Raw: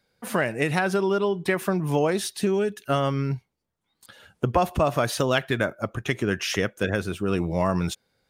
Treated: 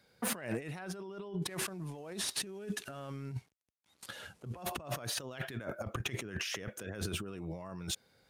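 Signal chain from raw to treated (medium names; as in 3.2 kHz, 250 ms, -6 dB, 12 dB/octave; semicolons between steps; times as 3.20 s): 1.42–4.63 s: CVSD coder 64 kbps; high-pass 51 Hz; compressor with a negative ratio -35 dBFS, ratio -1; hard clipper -21.5 dBFS, distortion -21 dB; trim -6 dB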